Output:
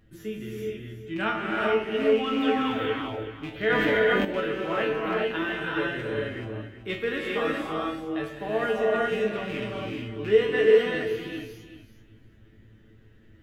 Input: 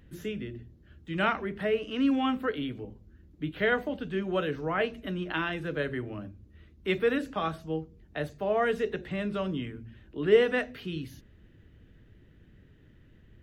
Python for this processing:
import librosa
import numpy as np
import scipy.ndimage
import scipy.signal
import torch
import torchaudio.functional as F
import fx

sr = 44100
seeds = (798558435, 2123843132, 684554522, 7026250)

y = fx.rattle_buzz(x, sr, strikes_db=-32.0, level_db=-27.0)
y = fx.spec_paint(y, sr, seeds[0], shape='fall', start_s=2.42, length_s=0.45, low_hz=360.0, high_hz=3800.0, level_db=-38.0)
y = fx.comb_fb(y, sr, f0_hz=110.0, decay_s=0.29, harmonics='all', damping=0.0, mix_pct=90)
y = fx.echo_feedback(y, sr, ms=378, feedback_pct=17, wet_db=-12)
y = fx.rev_gated(y, sr, seeds[1], gate_ms=460, shape='rising', drr_db=-3.0)
y = fx.env_flatten(y, sr, amount_pct=70, at=(3.7, 4.25))
y = F.gain(torch.from_numpy(y), 7.5).numpy()